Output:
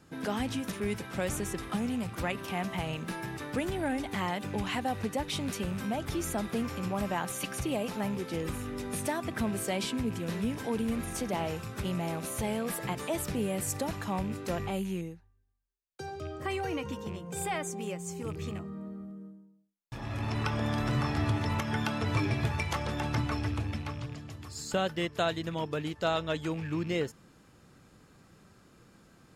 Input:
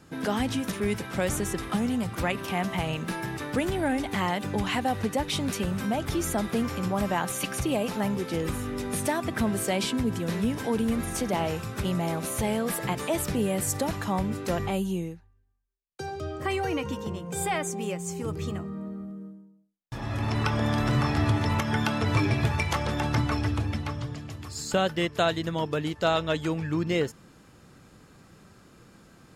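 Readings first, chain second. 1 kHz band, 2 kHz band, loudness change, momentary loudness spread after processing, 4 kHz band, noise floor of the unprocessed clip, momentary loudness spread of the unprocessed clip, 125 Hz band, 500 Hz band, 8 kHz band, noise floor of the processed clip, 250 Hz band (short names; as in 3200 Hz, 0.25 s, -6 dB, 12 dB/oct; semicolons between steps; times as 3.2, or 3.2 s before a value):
-5.0 dB, -5.0 dB, -5.0 dB, 8 LU, -5.0 dB, -55 dBFS, 8 LU, -5.0 dB, -5.0 dB, -5.0 dB, -60 dBFS, -5.0 dB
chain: rattling part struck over -31 dBFS, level -35 dBFS; gain -5 dB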